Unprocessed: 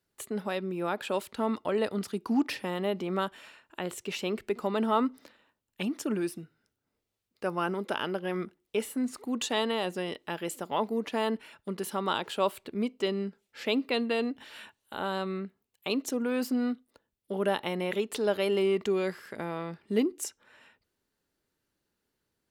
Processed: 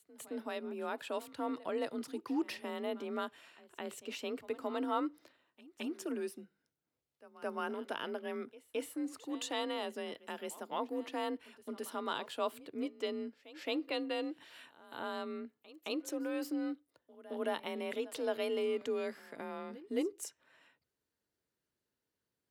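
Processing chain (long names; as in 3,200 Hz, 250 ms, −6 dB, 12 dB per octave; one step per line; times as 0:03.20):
echo ahead of the sound 218 ms −18.5 dB
frequency shifter +40 Hz
level −8 dB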